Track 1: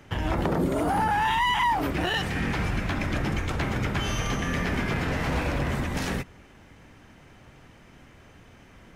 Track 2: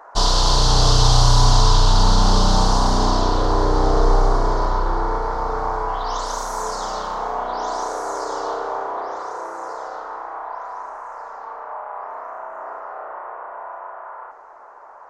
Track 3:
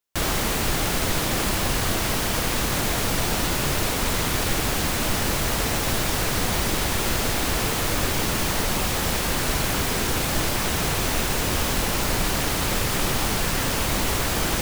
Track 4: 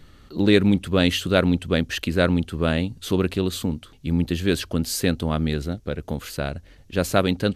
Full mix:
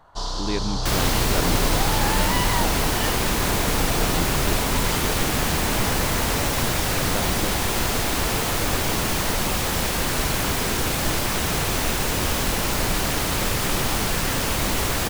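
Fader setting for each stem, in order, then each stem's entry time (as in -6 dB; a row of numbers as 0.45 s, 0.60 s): -4.5 dB, -11.5 dB, +0.5 dB, -11.5 dB; 0.90 s, 0.00 s, 0.70 s, 0.00 s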